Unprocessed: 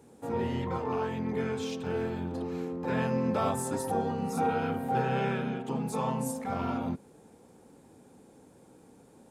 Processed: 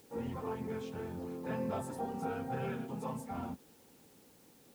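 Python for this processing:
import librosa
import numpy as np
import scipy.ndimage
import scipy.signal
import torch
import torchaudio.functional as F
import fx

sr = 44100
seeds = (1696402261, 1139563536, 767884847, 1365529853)

y = fx.high_shelf(x, sr, hz=2600.0, db=-6.0)
y = fx.dmg_noise_colour(y, sr, seeds[0], colour='white', level_db=-58.0)
y = fx.stretch_vocoder_free(y, sr, factor=0.51)
y = y * librosa.db_to_amplitude(-4.5)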